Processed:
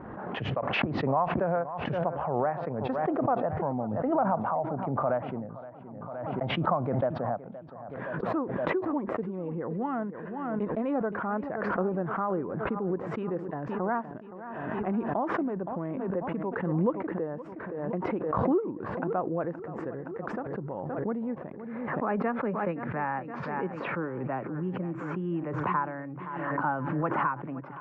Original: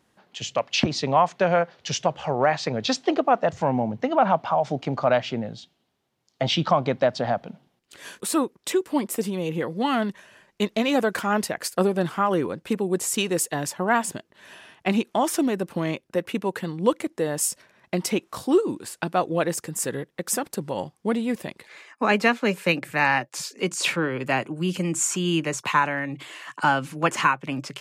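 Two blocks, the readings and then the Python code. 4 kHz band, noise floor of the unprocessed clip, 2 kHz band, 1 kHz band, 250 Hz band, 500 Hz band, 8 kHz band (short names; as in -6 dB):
-16.0 dB, -70 dBFS, -10.0 dB, -5.5 dB, -5.0 dB, -5.5 dB, under -40 dB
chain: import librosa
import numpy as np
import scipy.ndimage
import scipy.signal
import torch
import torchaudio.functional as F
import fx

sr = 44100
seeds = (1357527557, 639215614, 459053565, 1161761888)

y = scipy.signal.sosfilt(scipy.signal.butter(4, 1400.0, 'lowpass', fs=sr, output='sos'), x)
y = fx.echo_feedback(y, sr, ms=520, feedback_pct=43, wet_db=-16.0)
y = fx.pre_swell(y, sr, db_per_s=28.0)
y = y * librosa.db_to_amplitude(-8.0)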